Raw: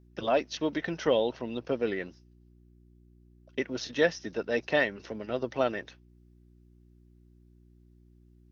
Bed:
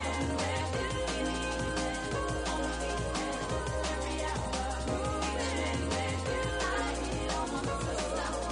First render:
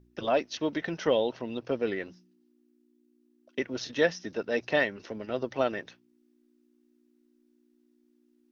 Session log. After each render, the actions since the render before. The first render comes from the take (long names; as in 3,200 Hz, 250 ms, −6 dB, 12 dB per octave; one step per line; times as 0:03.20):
hum removal 60 Hz, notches 3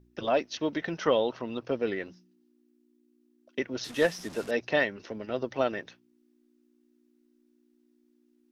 0:01.01–0:01.65: parametric band 1,200 Hz +8.5 dB 0.48 octaves
0:03.84–0:04.51: linear delta modulator 64 kbit/s, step −38.5 dBFS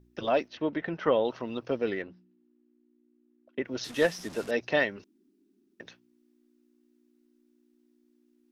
0:00.48–0:01.25: low-pass filter 2,400 Hz
0:02.02–0:03.65: high-frequency loss of the air 390 metres
0:05.04–0:05.80: fill with room tone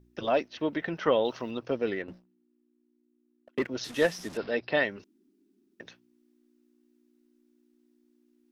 0:00.55–0:01.51: high-shelf EQ 3,900 Hz +10.5 dB
0:02.08–0:03.67: leveller curve on the samples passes 2
0:04.37–0:04.85: Chebyshev low-pass filter 5,100 Hz, order 6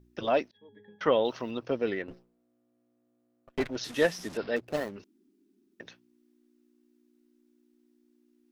0:00.51–0:01.01: resonances in every octave G#, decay 0.4 s
0:02.10–0:03.76: lower of the sound and its delayed copy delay 7.6 ms
0:04.56–0:04.96: running median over 41 samples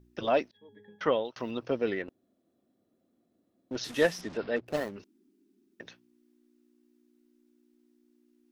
0:00.92–0:01.36: fade out equal-power
0:02.09–0:03.71: fill with room tone
0:04.21–0:04.66: high-frequency loss of the air 130 metres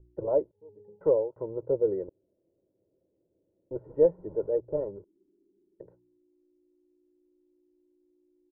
inverse Chebyshev low-pass filter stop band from 4,000 Hz, stop band 80 dB
comb filter 2.1 ms, depth 91%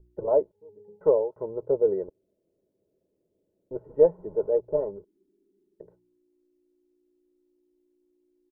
comb filter 4.7 ms, depth 35%
dynamic equaliser 910 Hz, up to +6 dB, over −39 dBFS, Q 0.82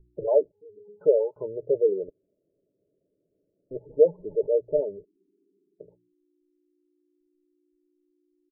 gate on every frequency bin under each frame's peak −20 dB strong
comb filter 6.9 ms, depth 30%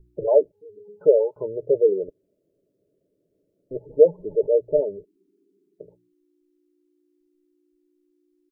level +4 dB